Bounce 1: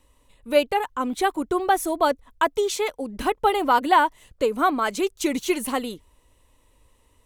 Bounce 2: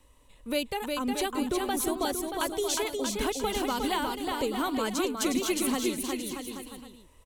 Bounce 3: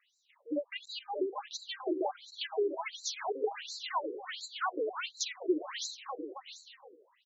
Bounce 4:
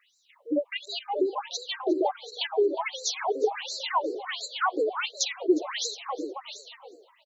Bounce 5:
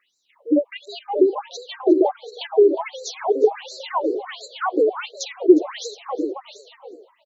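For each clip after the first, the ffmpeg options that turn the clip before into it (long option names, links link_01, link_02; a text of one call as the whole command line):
ffmpeg -i in.wav -filter_complex "[0:a]acrossover=split=270|3000[link_01][link_02][link_03];[link_02]acompressor=threshold=-36dB:ratio=3[link_04];[link_01][link_04][link_03]amix=inputs=3:normalize=0,asplit=2[link_05][link_06];[link_06]aecho=0:1:360|630|832.5|984.4|1098:0.631|0.398|0.251|0.158|0.1[link_07];[link_05][link_07]amix=inputs=2:normalize=0" out.wav
ffmpeg -i in.wav -af "bandreject=frequency=395.6:width_type=h:width=4,bandreject=frequency=791.2:width_type=h:width=4,bandreject=frequency=1186.8:width_type=h:width=4,bandreject=frequency=1582.4:width_type=h:width=4,bandreject=frequency=1978:width_type=h:width=4,bandreject=frequency=2373.6:width_type=h:width=4,bandreject=frequency=2769.2:width_type=h:width=4,bandreject=frequency=3164.8:width_type=h:width=4,afftfilt=real='re*between(b*sr/1024,370*pow(5500/370,0.5+0.5*sin(2*PI*1.4*pts/sr))/1.41,370*pow(5500/370,0.5+0.5*sin(2*PI*1.4*pts/sr))*1.41)':imag='im*between(b*sr/1024,370*pow(5500/370,0.5+0.5*sin(2*PI*1.4*pts/sr))/1.41,370*pow(5500/370,0.5+0.5*sin(2*PI*1.4*pts/sr))*1.41)':win_size=1024:overlap=0.75,volume=1dB" out.wav
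ffmpeg -i in.wav -filter_complex "[0:a]asplit=3[link_01][link_02][link_03];[link_02]adelay=359,afreqshift=110,volume=-22dB[link_04];[link_03]adelay=718,afreqshift=220,volume=-31.4dB[link_05];[link_01][link_04][link_05]amix=inputs=3:normalize=0,volume=7.5dB" out.wav
ffmpeg -i in.wav -af "equalizer=frequency=330:width=0.48:gain=14,volume=-3.5dB" out.wav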